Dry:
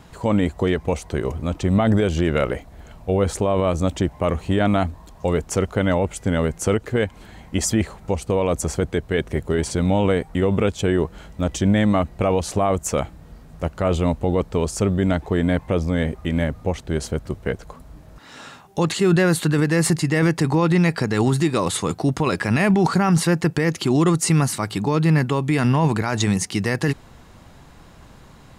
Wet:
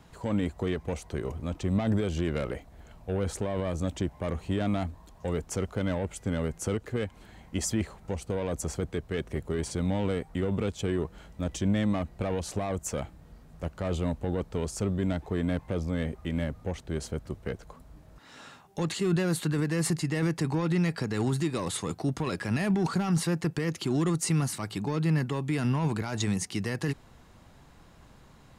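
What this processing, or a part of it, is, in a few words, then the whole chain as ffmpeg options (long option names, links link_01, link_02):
one-band saturation: -filter_complex "[0:a]acrossover=split=330|3000[link_01][link_02][link_03];[link_02]asoftclip=type=tanh:threshold=-21dB[link_04];[link_01][link_04][link_03]amix=inputs=3:normalize=0,volume=-8.5dB"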